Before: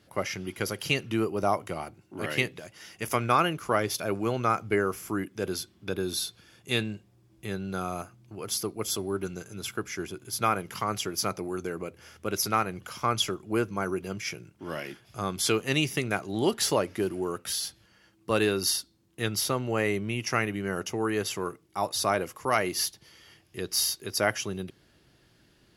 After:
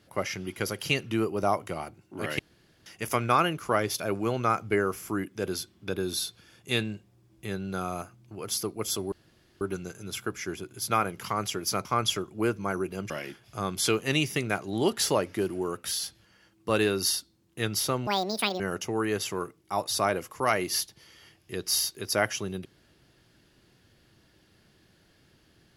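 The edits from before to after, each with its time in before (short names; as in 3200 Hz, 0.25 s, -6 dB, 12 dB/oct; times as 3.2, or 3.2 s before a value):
2.39–2.86 room tone
9.12 insert room tone 0.49 s
11.36–12.97 cut
14.22–14.71 cut
19.68–20.65 speed 183%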